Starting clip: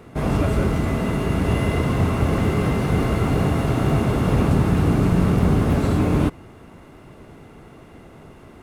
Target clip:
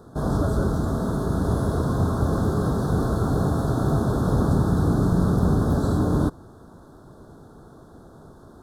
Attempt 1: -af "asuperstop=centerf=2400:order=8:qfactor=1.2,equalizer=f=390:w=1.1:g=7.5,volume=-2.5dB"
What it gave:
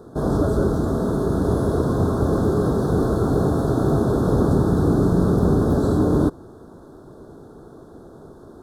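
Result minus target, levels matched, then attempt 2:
500 Hz band +3.5 dB
-af "asuperstop=centerf=2400:order=8:qfactor=1.2,volume=-2.5dB"

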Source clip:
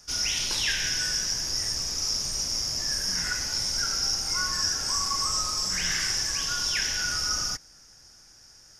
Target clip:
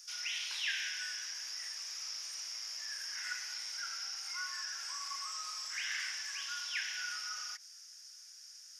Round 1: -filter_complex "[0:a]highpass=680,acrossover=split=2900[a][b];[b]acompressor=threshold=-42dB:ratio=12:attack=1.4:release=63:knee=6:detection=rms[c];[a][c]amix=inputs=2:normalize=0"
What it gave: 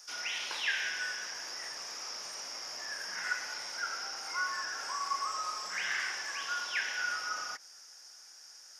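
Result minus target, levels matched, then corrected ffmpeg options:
500 Hz band +16.5 dB
-filter_complex "[0:a]highpass=2.3k,acrossover=split=2900[a][b];[b]acompressor=threshold=-42dB:ratio=12:attack=1.4:release=63:knee=6:detection=rms[c];[a][c]amix=inputs=2:normalize=0"

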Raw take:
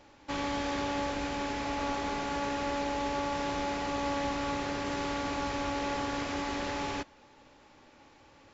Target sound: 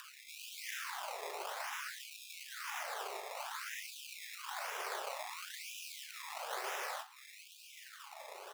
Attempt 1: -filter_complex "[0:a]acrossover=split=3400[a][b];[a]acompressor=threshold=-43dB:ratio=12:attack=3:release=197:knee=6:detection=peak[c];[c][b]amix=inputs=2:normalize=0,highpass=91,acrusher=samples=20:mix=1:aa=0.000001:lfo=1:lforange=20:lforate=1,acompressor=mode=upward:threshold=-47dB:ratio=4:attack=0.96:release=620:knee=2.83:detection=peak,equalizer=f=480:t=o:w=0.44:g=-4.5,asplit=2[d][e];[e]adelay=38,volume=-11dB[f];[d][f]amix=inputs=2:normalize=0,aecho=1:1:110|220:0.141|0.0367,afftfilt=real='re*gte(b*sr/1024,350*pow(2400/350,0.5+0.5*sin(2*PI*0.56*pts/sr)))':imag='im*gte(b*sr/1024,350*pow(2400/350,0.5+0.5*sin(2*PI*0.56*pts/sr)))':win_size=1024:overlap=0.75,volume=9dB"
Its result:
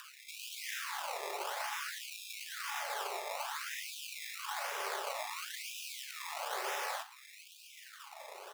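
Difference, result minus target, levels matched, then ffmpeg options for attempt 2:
compressor: peak gain reduction -10.5 dB
-filter_complex "[0:a]acrossover=split=3400[a][b];[a]acompressor=threshold=-54.5dB:ratio=12:attack=3:release=197:knee=6:detection=peak[c];[c][b]amix=inputs=2:normalize=0,highpass=91,acrusher=samples=20:mix=1:aa=0.000001:lfo=1:lforange=20:lforate=1,acompressor=mode=upward:threshold=-47dB:ratio=4:attack=0.96:release=620:knee=2.83:detection=peak,equalizer=f=480:t=o:w=0.44:g=-4.5,asplit=2[d][e];[e]adelay=38,volume=-11dB[f];[d][f]amix=inputs=2:normalize=0,aecho=1:1:110|220:0.141|0.0367,afftfilt=real='re*gte(b*sr/1024,350*pow(2400/350,0.5+0.5*sin(2*PI*0.56*pts/sr)))':imag='im*gte(b*sr/1024,350*pow(2400/350,0.5+0.5*sin(2*PI*0.56*pts/sr)))':win_size=1024:overlap=0.75,volume=9dB"

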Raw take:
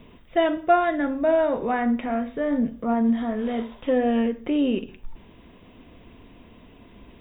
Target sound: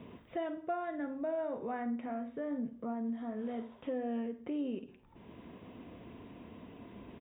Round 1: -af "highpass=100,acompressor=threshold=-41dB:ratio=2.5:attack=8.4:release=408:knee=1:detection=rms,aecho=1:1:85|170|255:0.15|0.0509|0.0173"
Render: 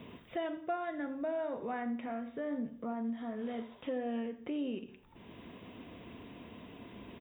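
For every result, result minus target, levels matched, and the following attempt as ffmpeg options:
echo 34 ms late; 4000 Hz band +6.0 dB
-af "highpass=100,acompressor=threshold=-41dB:ratio=2.5:attack=8.4:release=408:knee=1:detection=rms,aecho=1:1:51|102|153:0.15|0.0509|0.0173"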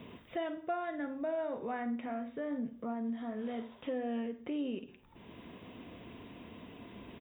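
4000 Hz band +6.0 dB
-af "highpass=100,highshelf=f=2.4k:g=-10.5,acompressor=threshold=-41dB:ratio=2.5:attack=8.4:release=408:knee=1:detection=rms,aecho=1:1:51|102|153:0.15|0.0509|0.0173"

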